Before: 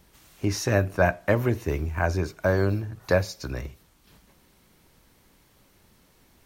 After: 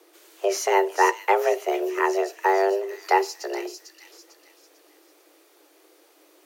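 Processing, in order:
delay with a high-pass on its return 448 ms, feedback 38%, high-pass 3,000 Hz, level −5.5 dB
frequency shifter +290 Hz
level +2 dB

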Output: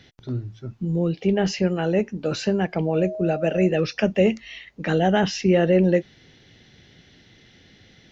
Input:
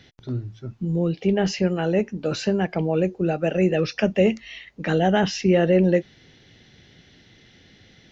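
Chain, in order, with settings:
0:02.86–0:03.66: steady tone 630 Hz −29 dBFS

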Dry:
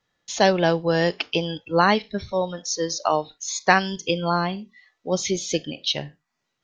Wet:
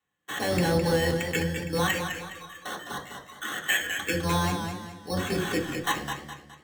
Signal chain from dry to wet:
sub-octave generator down 1 octave, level +2 dB
0:01.87–0:03.98: Chebyshev high-pass filter 1,700 Hz, order 5
output level in coarse steps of 12 dB
brickwall limiter −17 dBFS, peak gain reduction 5 dB
decimation without filtering 9×
convolution reverb RT60 0.45 s, pre-delay 3 ms, DRR −1 dB
feedback echo with a swinging delay time 208 ms, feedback 39%, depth 73 cents, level −7 dB

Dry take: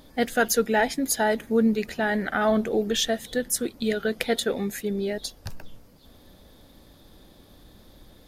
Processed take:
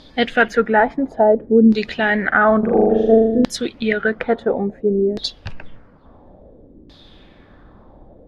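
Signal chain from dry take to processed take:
0:02.59–0:03.45: flutter between parallel walls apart 6.9 metres, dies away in 1.4 s
auto-filter low-pass saw down 0.58 Hz 300–4,600 Hz
level +5.5 dB

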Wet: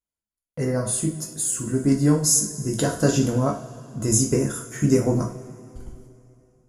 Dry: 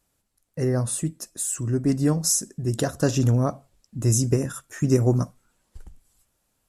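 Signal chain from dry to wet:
noise gate −54 dBFS, range −25 dB
EQ curve with evenly spaced ripples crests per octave 1.8, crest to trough 7 dB
coupled-rooms reverb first 0.39 s, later 3 s, from −20 dB, DRR 0 dB

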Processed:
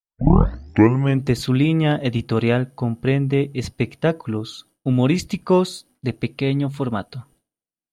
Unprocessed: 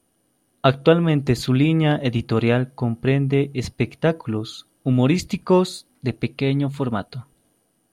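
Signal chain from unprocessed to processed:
turntable start at the beginning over 1.25 s
downward expander −47 dBFS

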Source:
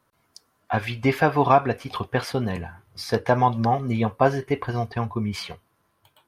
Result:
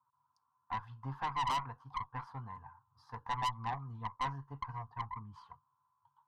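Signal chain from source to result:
pair of resonant band-passes 370 Hz, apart 2.8 octaves
phaser with its sweep stopped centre 610 Hz, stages 6
tube saturation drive 32 dB, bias 0.6
level +2 dB

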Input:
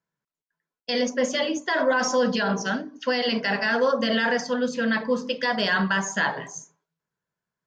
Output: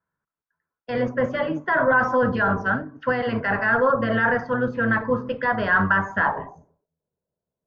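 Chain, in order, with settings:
sub-octave generator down 1 octave, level −5 dB
low-pass filter sweep 1,400 Hz → 570 Hz, 0:06.18–0:06.78

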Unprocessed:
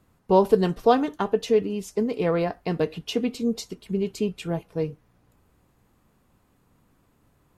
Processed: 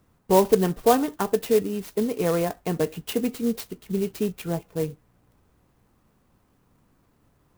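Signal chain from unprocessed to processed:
converter with an unsteady clock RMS 0.049 ms

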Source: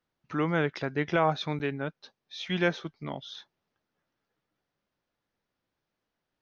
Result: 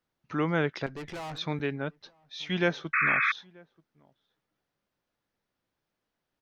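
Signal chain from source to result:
0:00.86–0:01.38: tube saturation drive 36 dB, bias 0.5
slap from a distant wall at 160 metres, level −26 dB
0:02.93–0:03.32: sound drawn into the spectrogram noise 1,100–2,600 Hz −25 dBFS

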